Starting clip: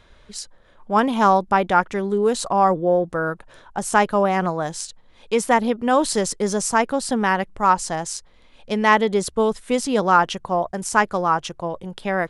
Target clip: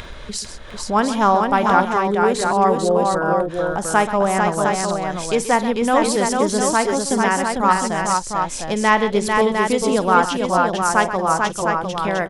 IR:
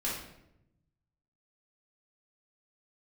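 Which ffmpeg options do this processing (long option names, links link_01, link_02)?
-af "acompressor=mode=upward:threshold=-20dB:ratio=2.5,aecho=1:1:50|131|446|705:0.15|0.237|0.631|0.531"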